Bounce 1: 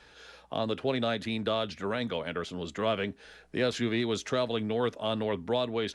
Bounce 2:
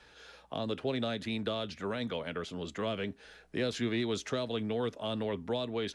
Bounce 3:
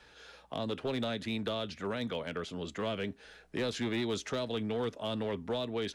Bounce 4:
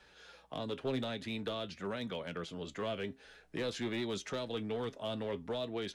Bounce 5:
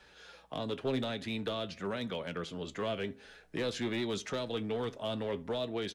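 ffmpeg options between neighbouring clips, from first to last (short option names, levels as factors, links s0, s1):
-filter_complex "[0:a]acrossover=split=460|3000[s0][s1][s2];[s1]acompressor=threshold=0.02:ratio=6[s3];[s0][s3][s2]amix=inputs=3:normalize=0,volume=0.75"
-af "asoftclip=type=hard:threshold=0.0422"
-af "flanger=delay=5.2:depth=2.4:regen=70:speed=0.49:shape=sinusoidal,volume=1.12"
-filter_complex "[0:a]asplit=2[s0][s1];[s1]adelay=72,lowpass=f=1900:p=1,volume=0.0891,asplit=2[s2][s3];[s3]adelay=72,lowpass=f=1900:p=1,volume=0.41,asplit=2[s4][s5];[s5]adelay=72,lowpass=f=1900:p=1,volume=0.41[s6];[s0][s2][s4][s6]amix=inputs=4:normalize=0,volume=1.33"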